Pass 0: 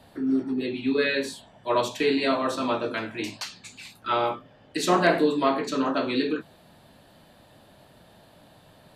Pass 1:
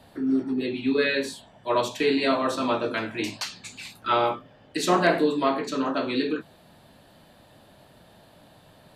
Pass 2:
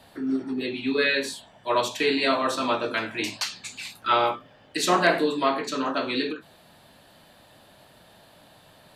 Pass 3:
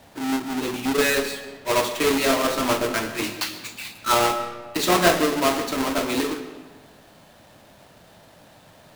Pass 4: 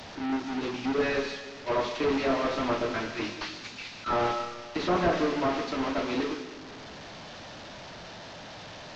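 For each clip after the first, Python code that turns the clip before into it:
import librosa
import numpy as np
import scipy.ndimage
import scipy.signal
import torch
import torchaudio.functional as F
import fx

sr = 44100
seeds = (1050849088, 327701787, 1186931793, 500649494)

y1 = fx.rider(x, sr, range_db=4, speed_s=2.0)
y2 = fx.tilt_shelf(y1, sr, db=-3.5, hz=660.0)
y2 = fx.end_taper(y2, sr, db_per_s=220.0)
y3 = fx.halfwave_hold(y2, sr)
y3 = fx.rev_freeverb(y3, sr, rt60_s=1.4, hf_ratio=0.7, predelay_ms=75, drr_db=11.0)
y3 = y3 * 10.0 ** (-2.0 / 20.0)
y4 = fx.delta_mod(y3, sr, bps=32000, step_db=-32.5)
y4 = y4 * 10.0 ** (-5.0 / 20.0)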